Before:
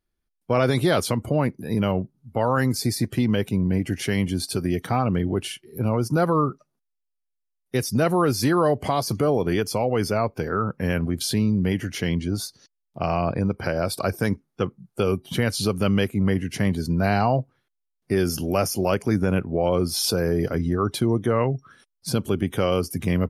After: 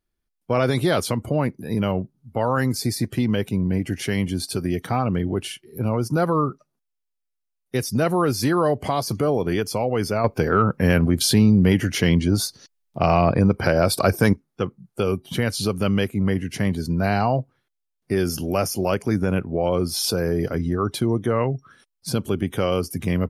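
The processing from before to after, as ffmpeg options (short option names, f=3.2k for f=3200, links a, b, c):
-filter_complex "[0:a]asettb=1/sr,asplit=3[a][b][c];[a]atrim=end=10.244[d];[b]atrim=start=10.24:end=14.33,asetpts=PTS-STARTPTS,afade=t=in:d=0.004:c=qsin,afade=t=out:st=4.086:d=0.004:c=qsin,acontrast=67[e];[c]atrim=start=14.326[f];[d][e]acrossfade=d=0.004:c1=hsin:c2=qsin[g];[g][f]acrossfade=d=0.004:c1=qsin:c2=hsin"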